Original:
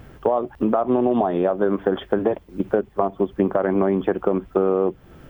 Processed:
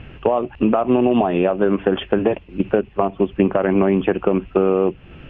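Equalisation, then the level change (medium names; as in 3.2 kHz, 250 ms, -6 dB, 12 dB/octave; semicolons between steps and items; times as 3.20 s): resonant low-pass 2.7 kHz, resonance Q 8.8; bass shelf 310 Hz +6.5 dB; 0.0 dB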